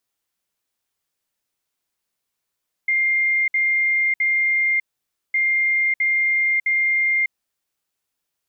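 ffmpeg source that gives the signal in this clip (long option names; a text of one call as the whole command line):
ffmpeg -f lavfi -i "aevalsrc='0.158*sin(2*PI*2110*t)*clip(min(mod(mod(t,2.46),0.66),0.6-mod(mod(t,2.46),0.66))/0.005,0,1)*lt(mod(t,2.46),1.98)':duration=4.92:sample_rate=44100" out.wav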